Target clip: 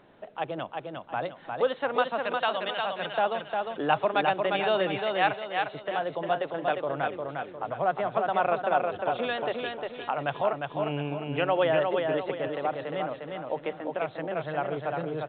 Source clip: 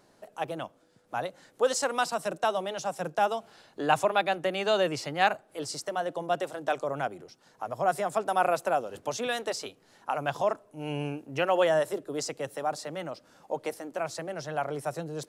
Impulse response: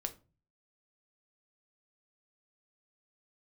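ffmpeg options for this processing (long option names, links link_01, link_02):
-filter_complex "[0:a]asettb=1/sr,asplit=3[link_01][link_02][link_03];[link_01]atrim=end=2.184[link_04];[link_02]atrim=start=2.18:end=3.15,asetpts=PTS-STARTPTS,afade=type=in:duration=0.004:curve=qsin,afade=type=out:start_time=0.966:duration=0.004:curve=qsin,tiltshelf=frequency=970:gain=-8[link_05];[link_03]atrim=start=3.146[link_06];[link_04][link_05]acrossfade=duration=0.004:curve1=hsin:curve2=qsin[link_07];[link_07][link_06]acrossfade=duration=0.004:curve1=qsin:curve2=hsin,asettb=1/sr,asplit=3[link_08][link_09][link_10];[link_08]atrim=end=4.994[link_11];[link_09]atrim=start=4.99:end=5.73,asetpts=PTS-STARTPTS,afade=type=in:duration=0.004:curve=qsin,afade=type=out:start_time=0.736:duration=0.004:curve=qsin,highpass=frequency=570:width=0.5412,highpass=frequency=570:width=1.3066[link_12];[link_10]atrim=start=5.726[link_13];[link_11][link_12]acrossfade=duration=0.004:curve1=hsin:curve2=qsin[link_14];[link_14][link_13]acrossfade=duration=0.004:curve1=qsin:curve2=hsin,asplit=2[link_15][link_16];[link_16]acompressor=threshold=-39dB:ratio=6,volume=1.5dB[link_17];[link_15][link_17]amix=inputs=2:normalize=0,aecho=1:1:354|708|1062|1416|1770:0.631|0.246|0.096|0.0374|0.0146,volume=-2dB" -ar 8000 -c:a pcm_alaw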